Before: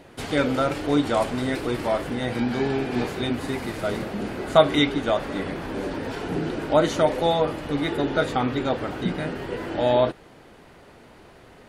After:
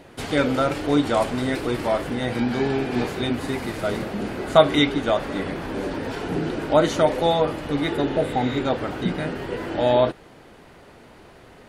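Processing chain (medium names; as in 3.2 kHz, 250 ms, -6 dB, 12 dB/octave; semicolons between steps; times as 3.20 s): spectral replace 8.12–8.54 s, 930–7400 Hz both; trim +1.5 dB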